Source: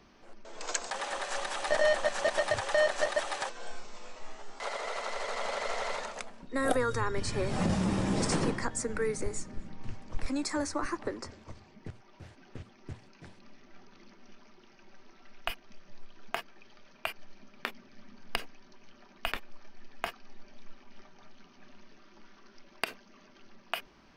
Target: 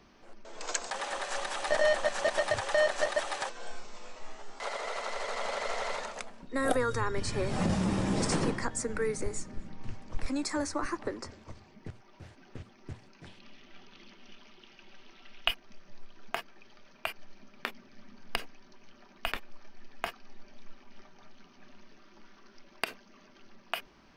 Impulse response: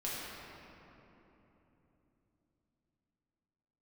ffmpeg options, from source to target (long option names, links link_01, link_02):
-filter_complex "[0:a]asettb=1/sr,asplit=3[link_01][link_02][link_03];[link_01]atrim=end=13.264[link_04];[link_02]atrim=start=13.26:end=15.51,asetpts=PTS-STARTPTS,afade=type=in:duration=0.004:curve=qsin,afade=type=out:start_time=2.246:duration=0.004:curve=qsin,equalizer=frequency=3100:width_type=o:width=0.81:gain=11.5[link_05];[link_03]atrim=start=15.506[link_06];[link_04][link_05]acrossfade=duration=0.004:curve1=hsin:curve2=qsin[link_07];[link_07][link_06]acrossfade=duration=0.004:curve1=qsin:curve2=hsin"